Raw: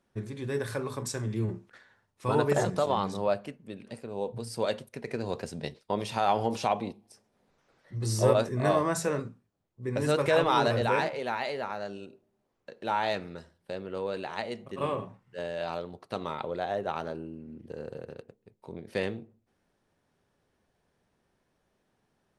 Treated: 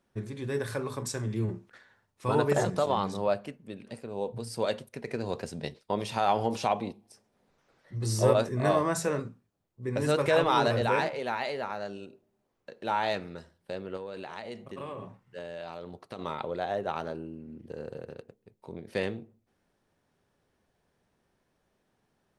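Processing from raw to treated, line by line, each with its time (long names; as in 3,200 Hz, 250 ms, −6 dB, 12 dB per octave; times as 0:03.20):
0:13.96–0:16.19: downward compressor, threshold −35 dBFS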